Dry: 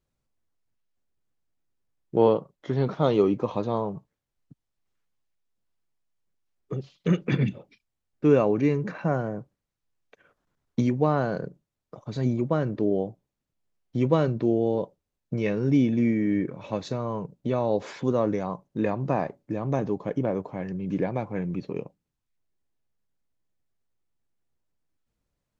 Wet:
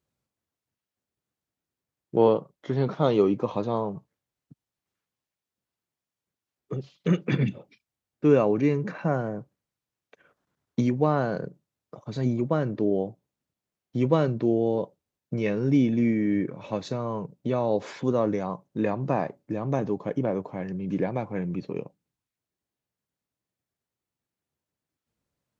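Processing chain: HPF 84 Hz

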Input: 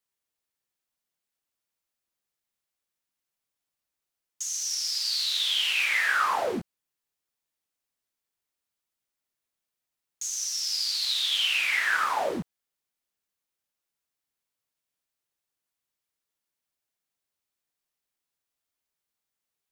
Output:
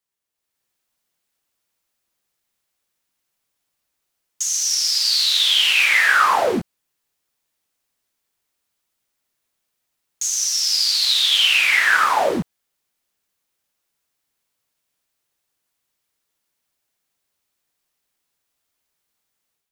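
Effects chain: AGC gain up to 9 dB; gain +1 dB

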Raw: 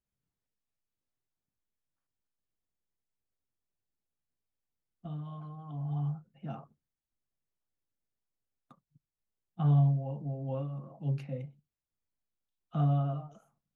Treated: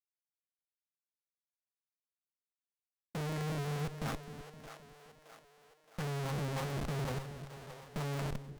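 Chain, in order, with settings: gate -53 dBFS, range -38 dB; low-pass sweep 1300 Hz -> 530 Hz, 10.55–12.79; tempo 1.6×; Schmitt trigger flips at -46 dBFS; formant shift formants +5 st; split-band echo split 400 Hz, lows 0.26 s, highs 0.62 s, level -10.5 dB; Doppler distortion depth 0.3 ms

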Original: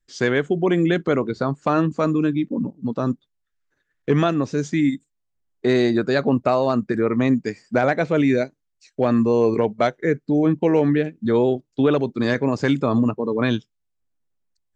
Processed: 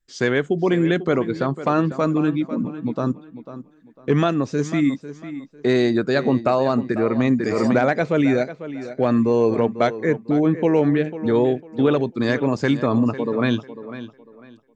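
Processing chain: tape echo 0.498 s, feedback 29%, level -12 dB, low-pass 4200 Hz; 7.34–7.83 backwards sustainer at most 24 dB/s

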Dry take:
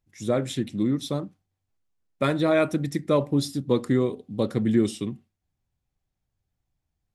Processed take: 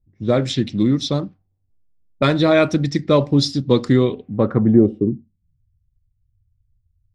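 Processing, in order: low-pass opened by the level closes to 370 Hz, open at -22.5 dBFS; low shelf 85 Hz +10 dB; low-pass sweep 5100 Hz -> 100 Hz, 3.91–5.66; gain +6 dB

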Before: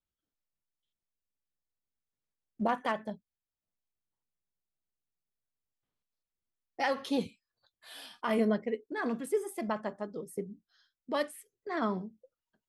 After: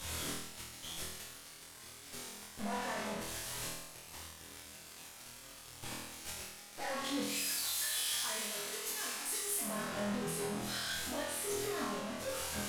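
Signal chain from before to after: delta modulation 64 kbps, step -27.5 dBFS; 7.22–9.61 tilt +4.5 dB/oct; limiter -22 dBFS, peak gain reduction 6.5 dB; chorus voices 2, 0.55 Hz, delay 11 ms, depth 3.8 ms; tube stage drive 31 dB, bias 0.25; tremolo saw up 6.5 Hz, depth 40%; flutter echo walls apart 4.2 m, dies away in 0.87 s; gain -3 dB

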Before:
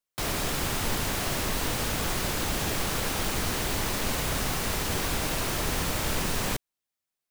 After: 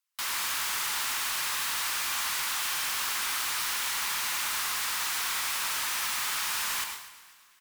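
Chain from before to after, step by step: steep high-pass 1000 Hz 36 dB/oct; hard clip -32 dBFS, distortion -10 dB; feedback echo 0.236 s, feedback 34%, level -17.5 dB; on a send at -5 dB: reverb, pre-delay 82 ms; on the sum: speed mistake 25 fps video run at 24 fps; gain +3 dB

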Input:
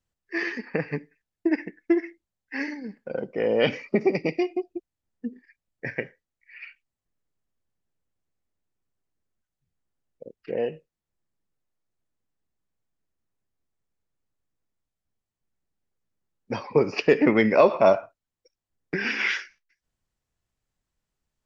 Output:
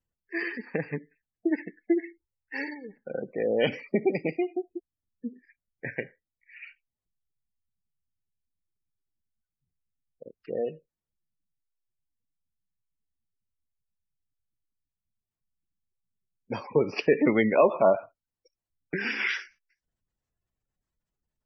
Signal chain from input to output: 2.07–2.97 comb 2.2 ms, depth 61%; spectral gate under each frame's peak -25 dB strong; gain -3 dB

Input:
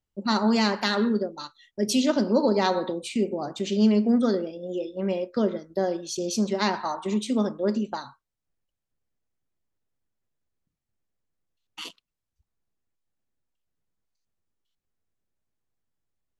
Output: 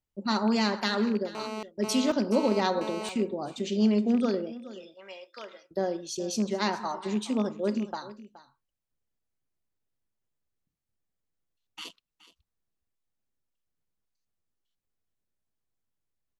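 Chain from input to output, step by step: rattling part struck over -26 dBFS, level -30 dBFS; 4.52–5.71 HPF 1200 Hz 12 dB/oct; echo 0.422 s -17 dB; 1.35–3.09 GSM buzz -33 dBFS; gain -3.5 dB

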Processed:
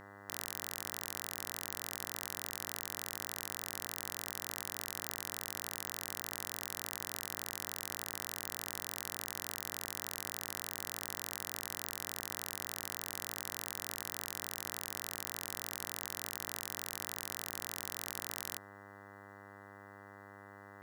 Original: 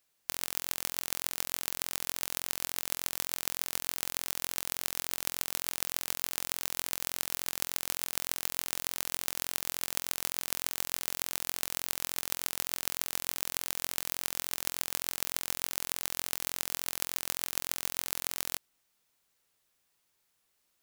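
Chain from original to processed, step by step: limiter -12 dBFS, peak gain reduction 10 dB; buzz 100 Hz, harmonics 20, -53 dBFS -1 dB/oct; gain -1 dB

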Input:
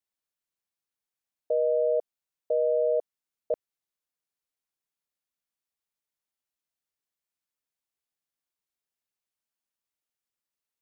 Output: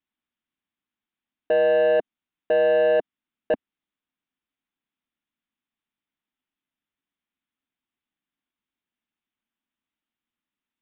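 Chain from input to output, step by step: graphic EQ 125/250/500 Hz -3/+12/-9 dB; sample leveller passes 2; downsampling 8000 Hz; gain +9 dB

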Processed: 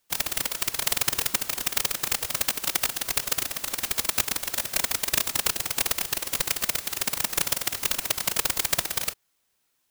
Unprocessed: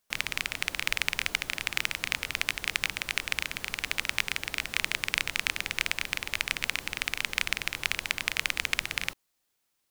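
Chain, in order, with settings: spectral whitening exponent 0.1; whisperiser; gain +4.5 dB

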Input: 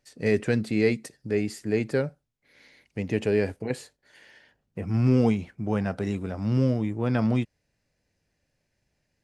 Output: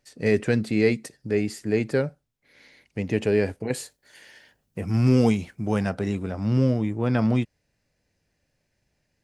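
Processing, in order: 3.7–5.89 high shelf 6300 Hz -> 4300 Hz +12 dB; gain +2 dB

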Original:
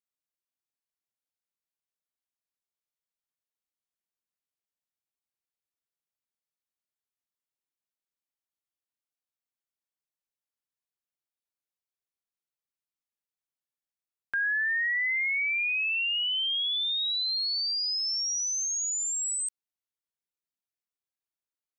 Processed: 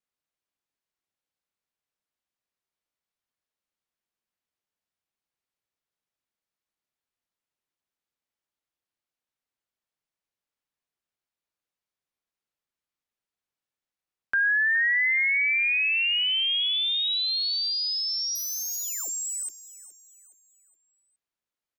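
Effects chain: 18.35–19.09 self-modulated delay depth 0.076 ms; high shelf 6400 Hz -11 dB; vibrato 0.81 Hz 18 cents; feedback echo 0.418 s, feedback 40%, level -16 dB; gain +5.5 dB

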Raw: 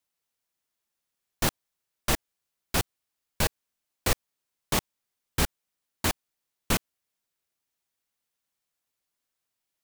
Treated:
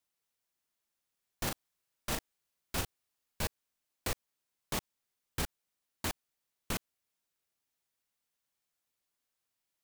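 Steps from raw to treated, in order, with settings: limiter -21.5 dBFS, peak gain reduction 10.5 dB; 1.43–3.46 doubler 38 ms -4 dB; gain -2 dB

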